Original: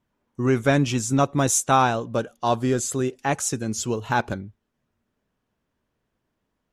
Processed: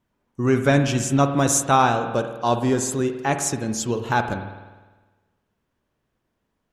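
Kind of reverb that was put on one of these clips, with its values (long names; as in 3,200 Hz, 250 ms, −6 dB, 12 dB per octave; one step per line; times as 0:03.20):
spring reverb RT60 1.3 s, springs 50 ms, chirp 40 ms, DRR 7.5 dB
level +1 dB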